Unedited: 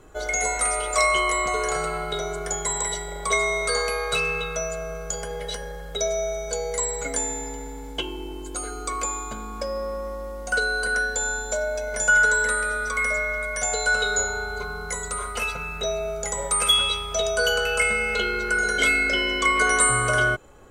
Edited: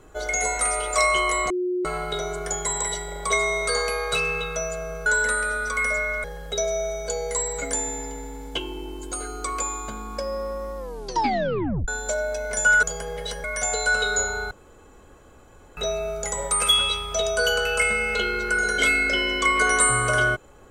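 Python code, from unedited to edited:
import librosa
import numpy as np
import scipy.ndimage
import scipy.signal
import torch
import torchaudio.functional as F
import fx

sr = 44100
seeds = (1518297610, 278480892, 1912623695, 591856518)

y = fx.edit(x, sr, fx.bleep(start_s=1.5, length_s=0.35, hz=361.0, db=-22.0),
    fx.swap(start_s=5.06, length_s=0.61, other_s=12.26, other_length_s=1.18),
    fx.tape_stop(start_s=10.2, length_s=1.11),
    fx.room_tone_fill(start_s=14.51, length_s=1.26), tone=tone)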